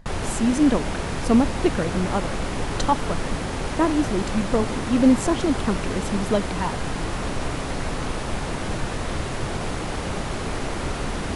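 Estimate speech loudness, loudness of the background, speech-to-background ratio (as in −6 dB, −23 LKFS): −23.5 LKFS, −28.5 LKFS, 5.0 dB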